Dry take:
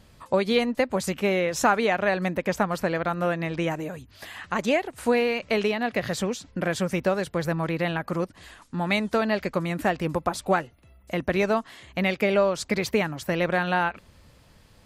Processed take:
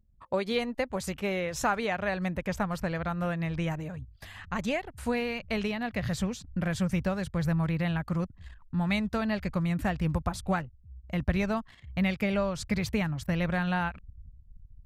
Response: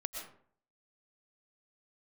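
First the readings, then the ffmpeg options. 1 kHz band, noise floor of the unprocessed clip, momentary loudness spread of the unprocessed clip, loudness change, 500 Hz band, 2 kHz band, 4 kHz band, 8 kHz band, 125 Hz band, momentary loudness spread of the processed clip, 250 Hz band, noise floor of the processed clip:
−7.0 dB, −56 dBFS, 8 LU, −5.0 dB, −8.5 dB, −6.5 dB, −6.0 dB, −6.0 dB, +1.5 dB, 6 LU, −2.0 dB, −56 dBFS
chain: -af "anlmdn=0.0631,asubboost=boost=9:cutoff=120,volume=-6dB"

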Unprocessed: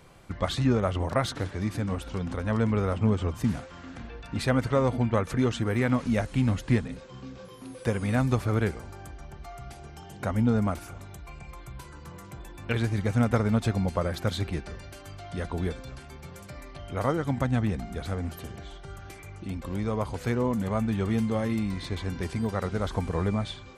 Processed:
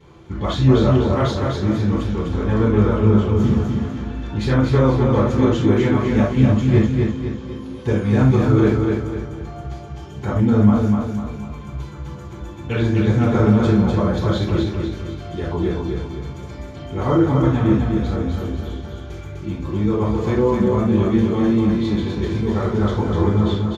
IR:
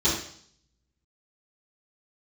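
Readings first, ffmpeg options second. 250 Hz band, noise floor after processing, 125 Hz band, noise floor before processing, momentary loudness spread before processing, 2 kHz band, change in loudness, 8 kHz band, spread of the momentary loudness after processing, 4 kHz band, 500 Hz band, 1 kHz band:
+11.0 dB, −34 dBFS, +10.5 dB, −46 dBFS, 19 LU, +4.5 dB, +9.5 dB, can't be measured, 16 LU, +6.0 dB, +10.0 dB, +7.0 dB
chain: -filter_complex "[0:a]bass=frequency=250:gain=-2,treble=frequency=4000:gain=-8,aecho=1:1:250|500|750|1000|1250:0.631|0.271|0.117|0.0502|0.0216[link_01];[1:a]atrim=start_sample=2205,afade=type=out:start_time=0.15:duration=0.01,atrim=end_sample=7056[link_02];[link_01][link_02]afir=irnorm=-1:irlink=0,volume=-7.5dB"

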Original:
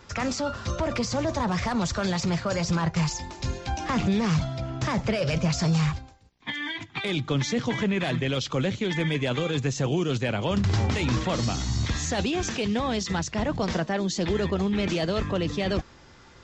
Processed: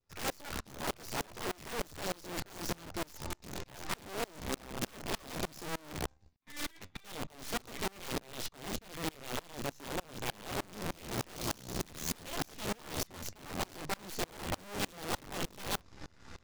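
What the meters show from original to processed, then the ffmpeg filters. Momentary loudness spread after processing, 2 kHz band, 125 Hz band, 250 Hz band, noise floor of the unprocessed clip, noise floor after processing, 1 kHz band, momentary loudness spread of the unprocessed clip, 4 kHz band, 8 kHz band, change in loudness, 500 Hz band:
5 LU, −10.5 dB, −19.5 dB, −17.0 dB, −52 dBFS, −62 dBFS, −9.5 dB, 6 LU, −9.5 dB, −6.5 dB, −13.0 dB, −13.5 dB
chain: -filter_complex "[0:a]adynamicequalizer=threshold=0.00447:dfrequency=1600:dqfactor=1.2:tfrequency=1600:tqfactor=1.2:attack=5:release=100:ratio=0.375:range=3:mode=cutabove:tftype=bell,asplit=2[link_01][link_02];[link_02]acrusher=bits=5:mix=0:aa=0.5,volume=-6.5dB[link_03];[link_01][link_03]amix=inputs=2:normalize=0,asoftclip=type=tanh:threshold=-27dB,bandreject=frequency=3200:width=12,areverse,acompressor=threshold=-46dB:ratio=5,areverse,aeval=exprs='0.015*(cos(1*acos(clip(val(0)/0.015,-1,1)))-cos(1*PI/2))+0.000422*(cos(3*acos(clip(val(0)/0.015,-1,1)))-cos(3*PI/2))+0.00168*(cos(6*acos(clip(val(0)/0.015,-1,1)))-cos(6*PI/2))+0.00133*(cos(7*acos(clip(val(0)/0.015,-1,1)))-cos(7*PI/2))':channel_layout=same,flanger=delay=9.7:depth=4.5:regen=55:speed=0.75:shape=triangular,lowshelf=frequency=160:gain=7,aeval=exprs='(mod(89.1*val(0)+1,2)-1)/89.1':channel_layout=same,aeval=exprs='val(0)*pow(10,-29*if(lt(mod(-3.3*n/s,1),2*abs(-3.3)/1000),1-mod(-3.3*n/s,1)/(2*abs(-3.3)/1000),(mod(-3.3*n/s,1)-2*abs(-3.3)/1000)/(1-2*abs(-3.3)/1000))/20)':channel_layout=same,volume=13dB"

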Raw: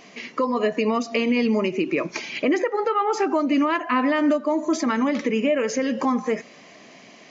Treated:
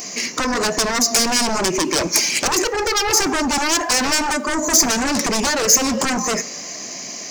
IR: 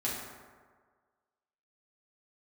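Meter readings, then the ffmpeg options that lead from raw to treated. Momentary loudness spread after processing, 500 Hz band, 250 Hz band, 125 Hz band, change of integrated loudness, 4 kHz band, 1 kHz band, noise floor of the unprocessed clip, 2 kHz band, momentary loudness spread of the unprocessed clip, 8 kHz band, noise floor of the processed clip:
10 LU, −0.5 dB, −1.0 dB, +5.5 dB, +5.5 dB, +16.0 dB, +3.5 dB, −48 dBFS, +7.0 dB, 5 LU, can't be measured, −32 dBFS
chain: -filter_complex "[0:a]aeval=exprs='0.335*sin(PI/2*4.47*val(0)/0.335)':channel_layout=same,aexciter=amount=4.4:drive=9.9:freq=4900,asplit=2[link_01][link_02];[1:a]atrim=start_sample=2205,asetrate=61740,aresample=44100[link_03];[link_02][link_03]afir=irnorm=-1:irlink=0,volume=-18.5dB[link_04];[link_01][link_04]amix=inputs=2:normalize=0,volume=-8dB"

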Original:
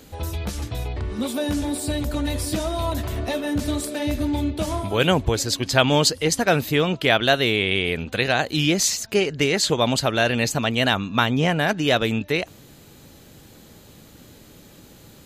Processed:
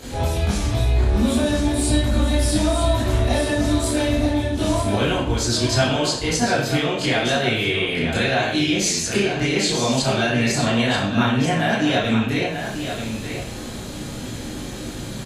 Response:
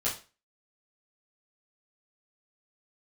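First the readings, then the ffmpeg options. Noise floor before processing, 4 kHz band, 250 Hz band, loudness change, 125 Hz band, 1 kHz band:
−48 dBFS, +0.5 dB, +3.5 dB, +1.5 dB, +4.0 dB, +1.0 dB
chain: -filter_complex "[0:a]acompressor=threshold=-32dB:ratio=12,aecho=1:1:936:0.398[link_01];[1:a]atrim=start_sample=2205,asetrate=23373,aresample=44100[link_02];[link_01][link_02]afir=irnorm=-1:irlink=0,volume=3.5dB"

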